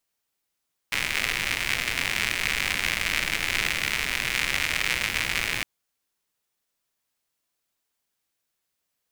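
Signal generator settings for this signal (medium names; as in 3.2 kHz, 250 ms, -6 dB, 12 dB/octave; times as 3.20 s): rain from filtered ticks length 4.71 s, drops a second 140, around 2.2 kHz, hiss -9 dB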